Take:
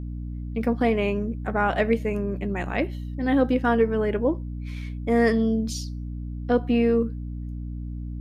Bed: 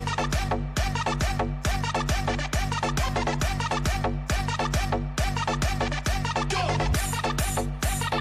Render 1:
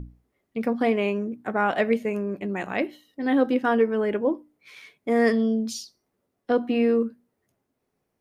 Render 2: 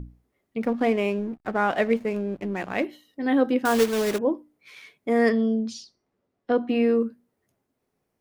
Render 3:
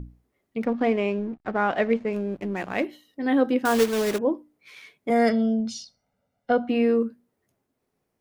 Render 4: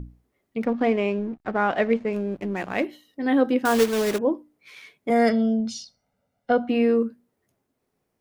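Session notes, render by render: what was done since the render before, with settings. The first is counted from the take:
hum notches 60/120/180/240/300 Hz
0.62–2.85 s: hysteresis with a dead band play -38.5 dBFS; 3.65–4.19 s: block-companded coder 3-bit; 5.29–6.69 s: distance through air 100 m
0.64–2.13 s: distance through air 92 m; 5.10–6.69 s: comb 1.4 ms, depth 90%
trim +1 dB

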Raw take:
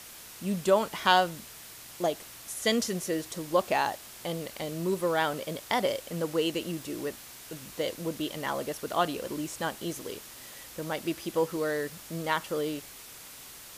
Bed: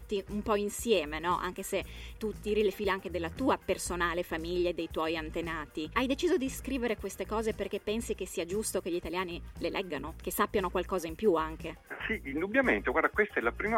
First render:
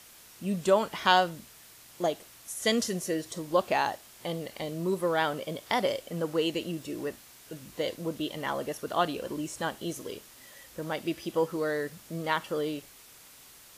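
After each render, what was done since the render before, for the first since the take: noise print and reduce 6 dB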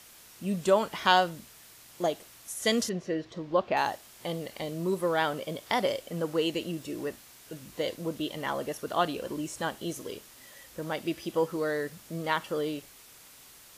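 2.89–3.77 s: distance through air 220 m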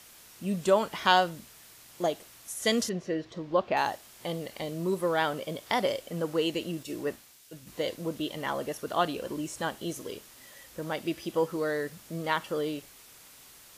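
6.83–7.67 s: three bands expanded up and down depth 100%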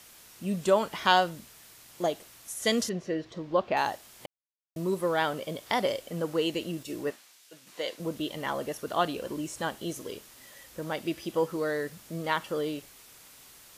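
4.26–4.76 s: mute; 7.10–8.00 s: frequency weighting A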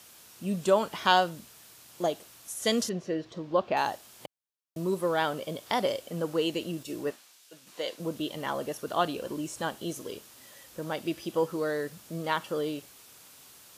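high-pass 72 Hz; peaking EQ 2 kHz -4 dB 0.37 oct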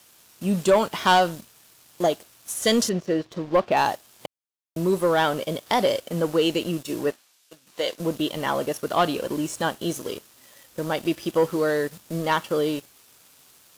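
waveshaping leveller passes 2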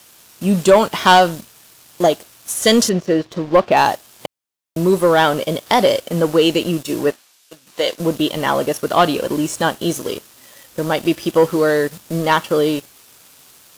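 trim +7.5 dB

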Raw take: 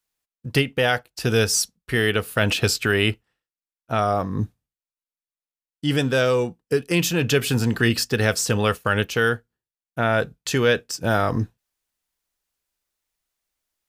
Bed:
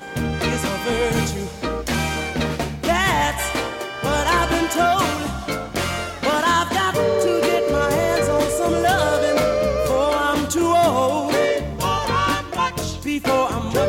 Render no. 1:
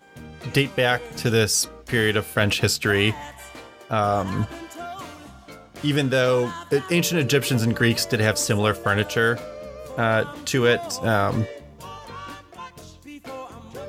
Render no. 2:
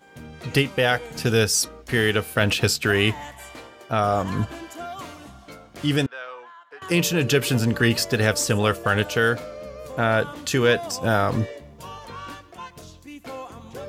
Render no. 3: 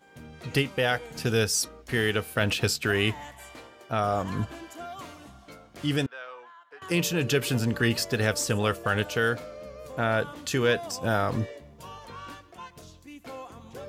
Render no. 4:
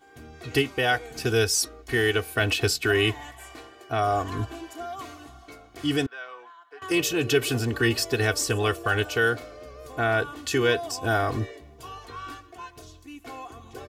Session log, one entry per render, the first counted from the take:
add bed -17.5 dB
6.06–6.82 s: ladder band-pass 1.4 kHz, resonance 20%
trim -5 dB
comb 2.7 ms, depth 80%

